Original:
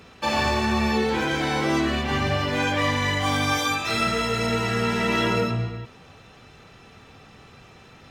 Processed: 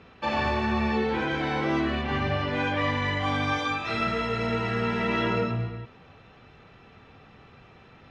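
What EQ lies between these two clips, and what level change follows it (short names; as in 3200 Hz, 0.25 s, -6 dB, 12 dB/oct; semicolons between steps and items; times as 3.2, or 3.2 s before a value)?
LPF 3100 Hz 12 dB/oct; -3.0 dB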